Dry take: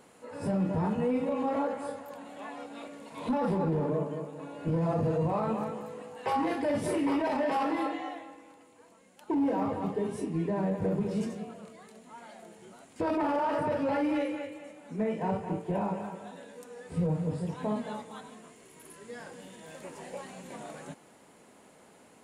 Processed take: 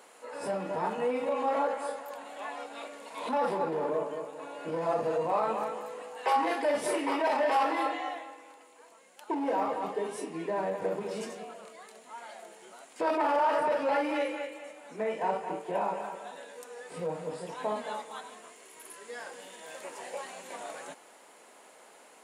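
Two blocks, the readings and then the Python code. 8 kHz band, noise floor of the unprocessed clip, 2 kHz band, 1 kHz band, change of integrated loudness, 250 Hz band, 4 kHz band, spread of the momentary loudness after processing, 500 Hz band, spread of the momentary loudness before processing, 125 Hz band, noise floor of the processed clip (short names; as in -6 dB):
+4.5 dB, -58 dBFS, +4.5 dB, +4.0 dB, -0.5 dB, -7.5 dB, +4.5 dB, 18 LU, +1.5 dB, 18 LU, -15.5 dB, -56 dBFS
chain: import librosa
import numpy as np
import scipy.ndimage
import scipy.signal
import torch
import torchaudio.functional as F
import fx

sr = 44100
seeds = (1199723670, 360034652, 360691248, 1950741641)

y = scipy.signal.sosfilt(scipy.signal.butter(2, 520.0, 'highpass', fs=sr, output='sos'), x)
y = y * librosa.db_to_amplitude(4.5)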